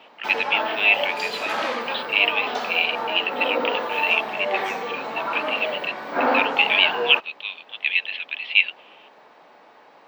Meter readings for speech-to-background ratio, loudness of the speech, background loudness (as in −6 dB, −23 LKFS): 4.5 dB, −22.0 LKFS, −26.5 LKFS